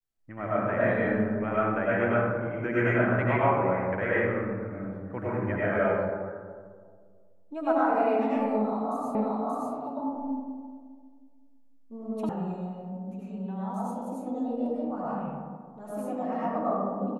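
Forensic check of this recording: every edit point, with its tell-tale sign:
9.15 s: repeat of the last 0.58 s
12.29 s: sound stops dead

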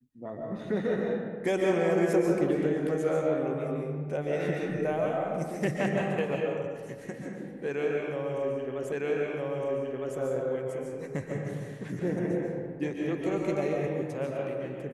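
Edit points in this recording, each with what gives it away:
8.92 s: repeat of the last 1.26 s

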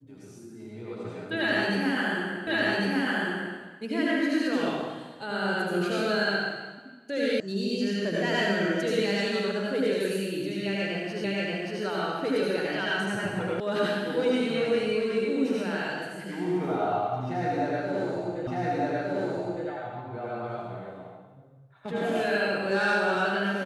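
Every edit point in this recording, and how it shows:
2.47 s: repeat of the last 1.1 s
7.40 s: sound stops dead
11.24 s: repeat of the last 0.58 s
13.60 s: sound stops dead
18.47 s: repeat of the last 1.21 s

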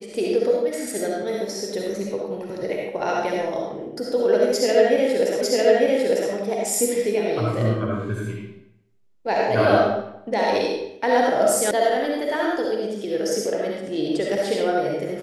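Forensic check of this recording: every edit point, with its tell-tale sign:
5.41 s: repeat of the last 0.9 s
11.71 s: sound stops dead

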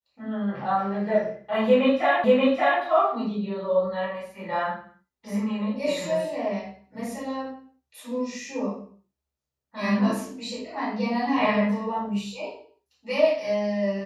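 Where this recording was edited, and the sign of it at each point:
2.24 s: repeat of the last 0.58 s

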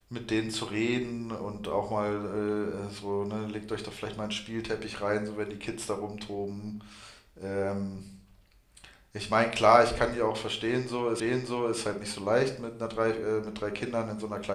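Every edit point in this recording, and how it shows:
11.20 s: repeat of the last 0.58 s

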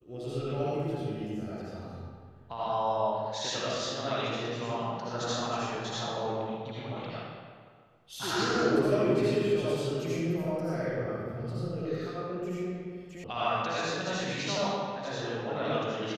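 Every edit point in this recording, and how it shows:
13.24 s: sound stops dead

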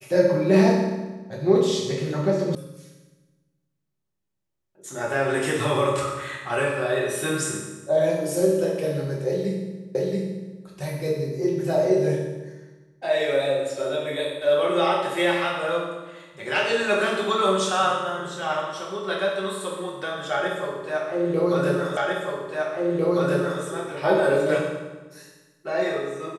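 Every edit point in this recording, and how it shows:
2.55 s: sound stops dead
9.95 s: repeat of the last 0.68 s
21.97 s: repeat of the last 1.65 s

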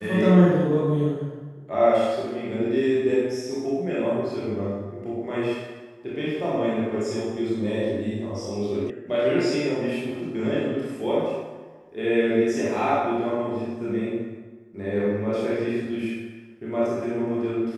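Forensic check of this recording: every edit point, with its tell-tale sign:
8.90 s: sound stops dead

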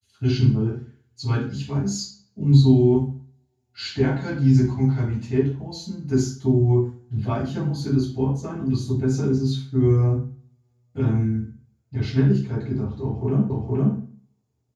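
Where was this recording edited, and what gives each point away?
13.50 s: repeat of the last 0.47 s

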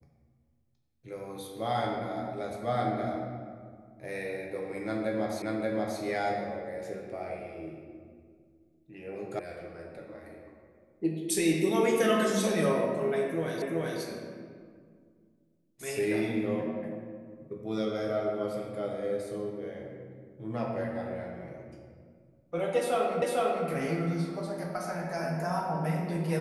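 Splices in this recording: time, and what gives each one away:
5.42 s: repeat of the last 0.58 s
9.39 s: sound stops dead
13.62 s: repeat of the last 0.38 s
23.22 s: repeat of the last 0.45 s

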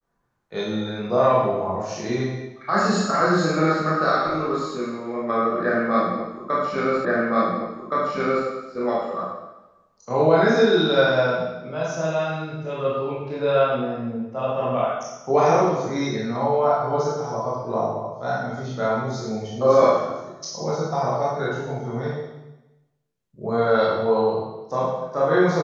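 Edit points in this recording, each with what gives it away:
7.05 s: repeat of the last 1.42 s

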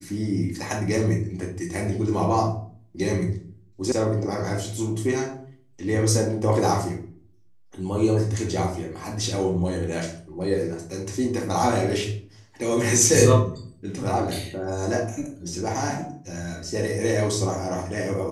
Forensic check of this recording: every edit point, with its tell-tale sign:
3.92 s: sound stops dead

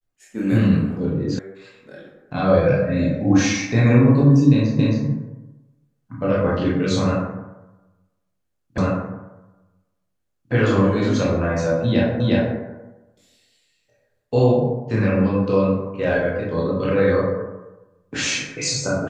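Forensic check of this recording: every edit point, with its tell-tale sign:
1.39 s: sound stops dead
4.79 s: repeat of the last 0.27 s
8.78 s: repeat of the last 1.75 s
12.20 s: repeat of the last 0.36 s

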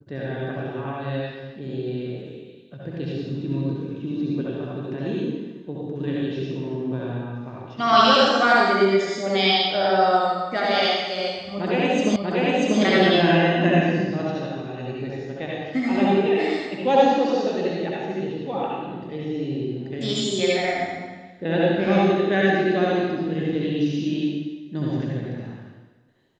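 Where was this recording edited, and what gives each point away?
12.16 s: repeat of the last 0.64 s

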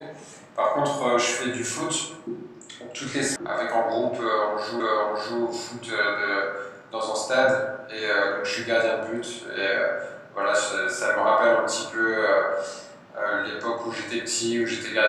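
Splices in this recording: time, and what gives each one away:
3.36 s: sound stops dead
4.80 s: repeat of the last 0.58 s

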